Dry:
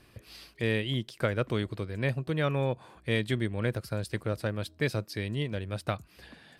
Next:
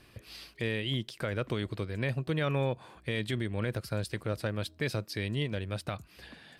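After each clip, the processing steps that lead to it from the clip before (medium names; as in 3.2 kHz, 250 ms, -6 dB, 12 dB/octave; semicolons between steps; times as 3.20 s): peaking EQ 3.1 kHz +2.5 dB 1.7 oct; peak limiter -21.5 dBFS, peak gain reduction 8.5 dB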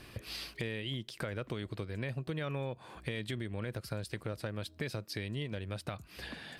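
compression 4:1, threshold -43 dBFS, peak gain reduction 14 dB; trim +6 dB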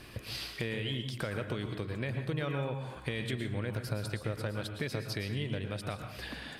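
plate-style reverb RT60 0.64 s, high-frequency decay 0.6×, pre-delay 100 ms, DRR 5 dB; trim +2 dB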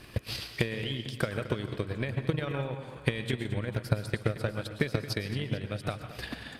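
transient shaper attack +10 dB, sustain -6 dB; modulated delay 222 ms, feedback 58%, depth 55 cents, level -15 dB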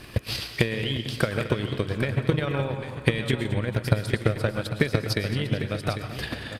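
delay 799 ms -11 dB; trim +6 dB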